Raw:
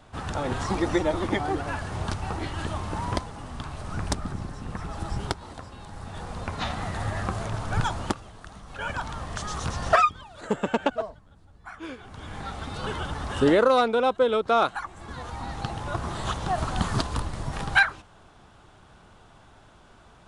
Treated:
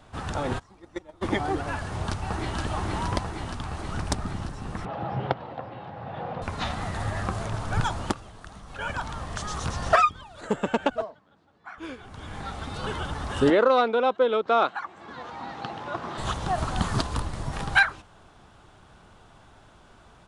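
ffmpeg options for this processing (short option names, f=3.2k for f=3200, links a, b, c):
-filter_complex "[0:a]asplit=3[a][b][c];[a]afade=t=out:st=0.58:d=0.02[d];[b]agate=range=-27dB:threshold=-19dB:ratio=16:release=100:detection=peak,afade=t=in:st=0.58:d=0.02,afade=t=out:st=1.21:d=0.02[e];[c]afade=t=in:st=1.21:d=0.02[f];[d][e][f]amix=inputs=3:normalize=0,asplit=2[g][h];[h]afade=t=in:st=1.83:d=0.01,afade=t=out:st=2.59:d=0.01,aecho=0:1:470|940|1410|1880|2350|2820|3290|3760|4230|4700|5170|5640:0.749894|0.562421|0.421815|0.316362|0.237271|0.177953|0.133465|0.100099|0.0750741|0.0563056|0.0422292|0.0316719[i];[g][i]amix=inputs=2:normalize=0,asettb=1/sr,asplit=3[j][k][l];[j]atrim=end=4.854[m];[k]atrim=start=4.85:end=6.42,asetpts=PTS-STARTPTS,afade=t=in:d=0.004:c=qsin,afade=t=out:st=1.566:d=0.004:c=qsin,highpass=f=110:w=0.5412,highpass=f=110:w=1.3066,equalizer=f=130:t=q:w=4:g=7,equalizer=f=530:t=q:w=4:g=10,equalizer=f=750:t=q:w=4:g=8,lowpass=f=3.2k:w=0.5412,lowpass=f=3.2k:w=1.3066[n];[l]atrim=start=6.416[o];[m][n]acrossfade=d=0.004:c1=hsin:c2=qsin[p];[p][o]acrossfade=d=0.004:c1=qsin:c2=hsin,asettb=1/sr,asplit=3[q][r][s];[q]atrim=end=11.044[t];[r]atrim=start=11.04:end=11.78,asetpts=PTS-STARTPTS,afade=t=in:d=0.004:c=qsin,afade=t=out:st=0.736:d=0.004:c=qsin,highpass=230,lowpass=4.5k[u];[s]atrim=start=11.776[v];[t][u]acrossfade=d=0.004:c1=hsin:c2=qsin[w];[w][v]acrossfade=d=0.004:c1=qsin:c2=hsin,asettb=1/sr,asplit=3[x][y][z];[x]atrim=end=13.504[aa];[y]atrim=start=13.5:end=16.18,asetpts=PTS-STARTPTS,afade=t=in:d=0.004:c=qsin,afade=t=out:st=2.676:d=0.004:c=qsin,highpass=220,lowpass=4.1k[ab];[z]atrim=start=16.176[ac];[aa][ab]acrossfade=d=0.004:c1=hsin:c2=qsin[ad];[ad][ac]acrossfade=d=0.004:c1=qsin:c2=hsin"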